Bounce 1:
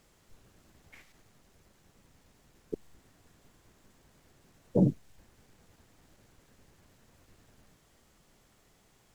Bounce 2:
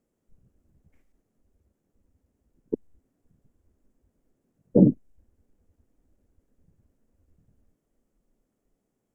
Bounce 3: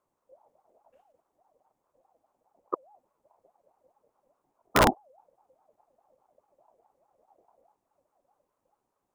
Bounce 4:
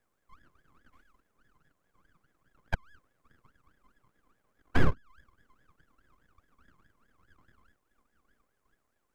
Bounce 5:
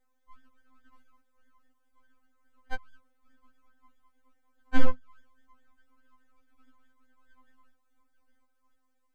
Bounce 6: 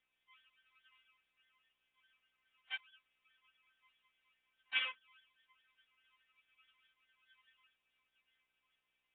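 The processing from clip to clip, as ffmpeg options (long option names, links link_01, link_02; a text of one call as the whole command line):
ffmpeg -i in.wav -af "afwtdn=0.00447,equalizer=frequency=250:width_type=o:width=1:gain=11,equalizer=frequency=500:width_type=o:width=1:gain=6,equalizer=frequency=1000:width_type=o:width=1:gain=-3,equalizer=frequency=2000:width_type=o:width=1:gain=-3,equalizer=frequency=4000:width_type=o:width=1:gain=-11" out.wav
ffmpeg -i in.wav -af "aeval=exprs='(mod(2.99*val(0)+1,2)-1)/2.99':channel_layout=same,aeval=exprs='val(0)*sin(2*PI*680*n/s+680*0.25/4.8*sin(2*PI*4.8*n/s))':channel_layout=same" out.wav
ffmpeg -i in.wav -filter_complex "[0:a]aeval=exprs='abs(val(0))':channel_layout=same,acrossover=split=270[link_01][link_02];[link_02]acompressor=threshold=-35dB:ratio=5[link_03];[link_01][link_03]amix=inputs=2:normalize=0,volume=3.5dB" out.wav
ffmpeg -i in.wav -af "afftfilt=real='re*3.46*eq(mod(b,12),0)':imag='im*3.46*eq(mod(b,12),0)':win_size=2048:overlap=0.75" out.wav
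ffmpeg -i in.wav -af "highpass=frequency=2600:width_type=q:width=4.3,volume=3dB" -ar 8000 -c:a nellymoser out.flv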